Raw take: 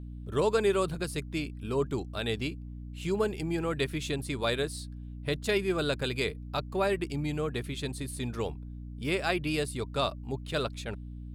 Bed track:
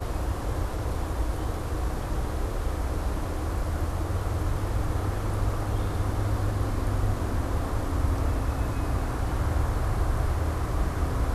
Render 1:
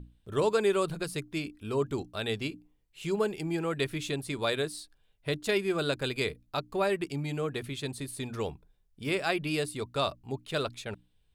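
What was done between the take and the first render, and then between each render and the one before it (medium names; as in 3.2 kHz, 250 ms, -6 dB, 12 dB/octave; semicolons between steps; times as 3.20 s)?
hum notches 60/120/180/240/300 Hz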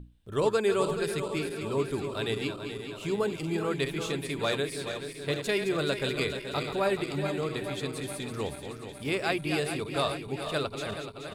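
backward echo that repeats 214 ms, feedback 78%, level -8 dB; delay 447 ms -22 dB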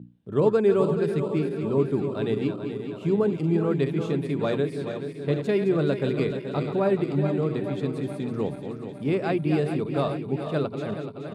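high-pass 150 Hz 24 dB/octave; tilt EQ -4.5 dB/octave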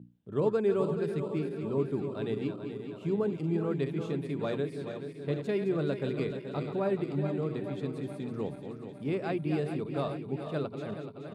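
trim -7 dB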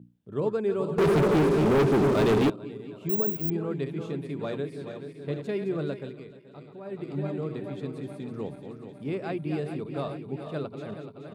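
0.98–2.50 s: waveshaping leveller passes 5; 3.09–3.50 s: careless resampling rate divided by 2×, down none, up zero stuff; 5.85–7.18 s: dip -12 dB, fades 0.34 s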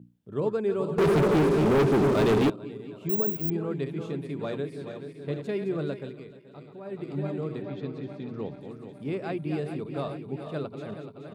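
7.62–8.61 s: low-pass 5.7 kHz 24 dB/octave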